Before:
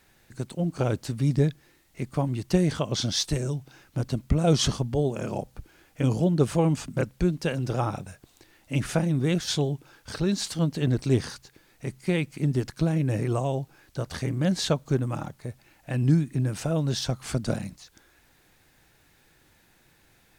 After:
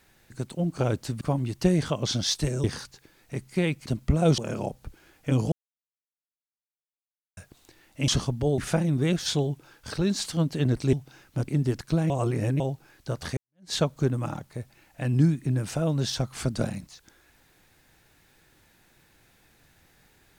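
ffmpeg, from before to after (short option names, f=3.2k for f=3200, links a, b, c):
-filter_complex "[0:a]asplit=14[a][b][c][d][e][f][g][h][i][j][k][l][m][n];[a]atrim=end=1.212[o];[b]atrim=start=2.098:end=3.532[p];[c]atrim=start=11.148:end=12.372[q];[d]atrim=start=4.078:end=4.602[r];[e]atrim=start=5.098:end=6.24,asetpts=PTS-STARTPTS,afade=t=out:st=1.138:d=0.004:c=hsin[s];[f]atrim=start=6.24:end=8.09,asetpts=PTS-STARTPTS,volume=0[t];[g]atrim=start=8.09:end=8.802,asetpts=PTS-STARTPTS,afade=t=in:d=0.004:c=hsin[u];[h]atrim=start=4.598:end=5.102[v];[i]atrim=start=8.798:end=11.152[w];[j]atrim=start=3.528:end=4.082[x];[k]atrim=start=12.368:end=12.992[y];[l]atrim=start=12.988:end=13.492,asetpts=PTS-STARTPTS,areverse[z];[m]atrim=start=13.488:end=14.26,asetpts=PTS-STARTPTS,afade=t=out:st=0.768:d=0.004:c=hsin[aa];[n]atrim=start=14.26,asetpts=PTS-STARTPTS,afade=t=in:d=0.36:c=exp[ab];[o][p]acrossfade=d=0.004:c1=hsin:c2=hsin[ac];[ac][q]acrossfade=d=0.004:c1=hsin:c2=hsin[ad];[ad][r]acrossfade=d=0.004:c1=hsin:c2=hsin[ae];[s][t][u]concat=n=3:v=0:a=1[af];[ae][af]acrossfade=d=0.004:c1=hsin:c2=hsin[ag];[ag][v]acrossfade=d=0.004:c1=hsin:c2=hsin[ah];[ah][w]acrossfade=d=0.004:c1=hsin:c2=hsin[ai];[ai][x]acrossfade=d=0.004:c1=hsin:c2=hsin[aj];[aj][y]acrossfade=d=0.004:c1=hsin:c2=hsin[ak];[ak][z]acrossfade=d=0.004:c1=hsin:c2=hsin[al];[aa][ab]concat=n=2:v=0:a=1[am];[al][am]acrossfade=d=0.004:c1=hsin:c2=hsin"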